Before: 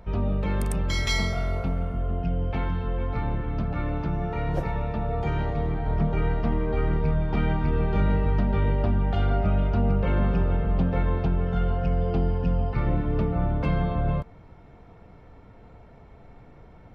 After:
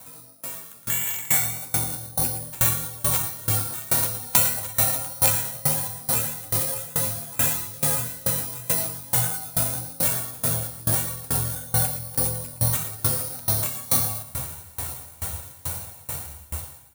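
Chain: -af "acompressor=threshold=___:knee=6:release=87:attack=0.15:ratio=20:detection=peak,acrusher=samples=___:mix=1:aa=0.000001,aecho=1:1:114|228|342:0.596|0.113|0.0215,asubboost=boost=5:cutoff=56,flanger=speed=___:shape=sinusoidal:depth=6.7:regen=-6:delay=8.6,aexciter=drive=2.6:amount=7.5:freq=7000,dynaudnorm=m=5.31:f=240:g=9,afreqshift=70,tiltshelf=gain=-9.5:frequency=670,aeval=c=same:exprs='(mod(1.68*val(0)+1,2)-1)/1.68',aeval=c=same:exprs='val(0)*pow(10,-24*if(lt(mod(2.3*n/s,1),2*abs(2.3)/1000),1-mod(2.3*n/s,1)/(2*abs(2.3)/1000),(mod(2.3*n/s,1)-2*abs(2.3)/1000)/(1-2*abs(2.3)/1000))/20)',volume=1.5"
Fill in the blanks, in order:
0.0251, 9, 1.7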